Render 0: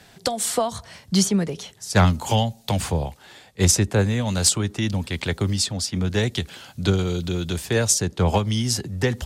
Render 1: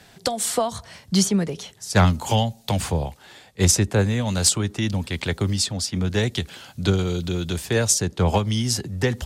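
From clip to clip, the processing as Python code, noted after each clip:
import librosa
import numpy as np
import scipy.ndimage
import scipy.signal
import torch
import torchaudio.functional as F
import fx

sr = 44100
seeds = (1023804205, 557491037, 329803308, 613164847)

y = x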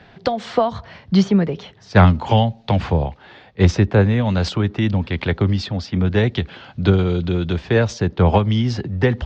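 y = scipy.ndimage.gaussian_filter1d(x, 2.5, mode='constant')
y = F.gain(torch.from_numpy(y), 5.5).numpy()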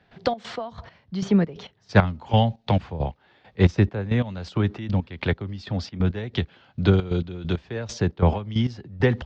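y = fx.step_gate(x, sr, bpm=135, pattern='.xx.x..x..', floor_db=-12.0, edge_ms=4.5)
y = F.gain(torch.from_numpy(y), -3.0).numpy()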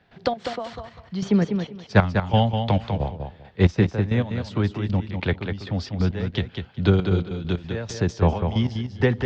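y = fx.echo_feedback(x, sr, ms=197, feedback_pct=19, wet_db=-6.5)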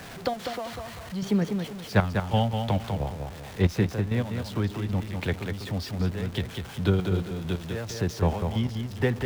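y = x + 0.5 * 10.0 ** (-31.0 / 20.0) * np.sign(x)
y = F.gain(torch.from_numpy(y), -5.5).numpy()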